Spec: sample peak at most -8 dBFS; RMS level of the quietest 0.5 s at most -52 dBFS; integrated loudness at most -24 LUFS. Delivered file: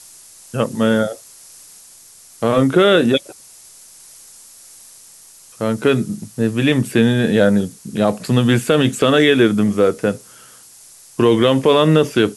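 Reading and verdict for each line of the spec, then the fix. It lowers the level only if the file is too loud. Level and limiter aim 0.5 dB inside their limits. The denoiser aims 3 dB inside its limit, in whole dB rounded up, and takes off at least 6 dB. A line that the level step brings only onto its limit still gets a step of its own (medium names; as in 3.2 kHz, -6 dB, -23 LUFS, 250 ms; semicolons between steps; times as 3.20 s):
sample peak -3.0 dBFS: fail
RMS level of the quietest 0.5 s -44 dBFS: fail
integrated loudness -16.0 LUFS: fail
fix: trim -8.5 dB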